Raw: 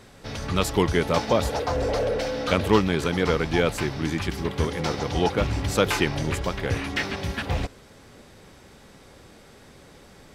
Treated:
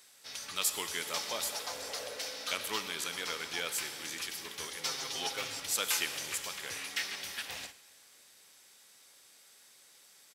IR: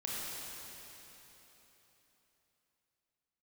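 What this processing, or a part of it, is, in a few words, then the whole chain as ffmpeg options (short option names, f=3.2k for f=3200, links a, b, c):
keyed gated reverb: -filter_complex "[0:a]aderivative,asplit=3[a][b][c];[1:a]atrim=start_sample=2205[d];[b][d]afir=irnorm=-1:irlink=0[e];[c]apad=whole_len=456041[f];[e][f]sidechaingate=range=-14dB:threshold=-50dB:ratio=16:detection=peak,volume=-8.5dB[g];[a][g]amix=inputs=2:normalize=0,asettb=1/sr,asplit=3[h][i][j];[h]atrim=end=4.834[k];[i]atrim=start=4.83:end=5.6,asetpts=PTS-STARTPTS,afade=t=in:d=0.004:c=qsin,afade=t=out:st=0.766:d=0.004:c=qsin,aecho=1:1:7.5:0.86,atrim=end_sample=33957[l];[j]atrim=start=5.596[m];[k][l]acrossfade=d=0.004:c1=hsin:c2=qsin[n];[n][m]acrossfade=d=0.004:c1=qsin:c2=hsin,aecho=1:1:113:0.0841"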